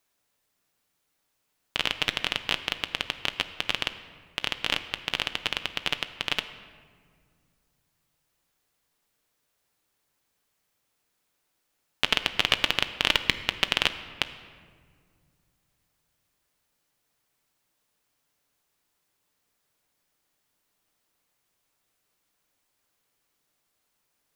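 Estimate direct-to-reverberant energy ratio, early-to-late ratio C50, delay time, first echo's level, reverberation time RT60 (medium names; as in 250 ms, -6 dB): 9.5 dB, 12.0 dB, no echo, no echo, 2.0 s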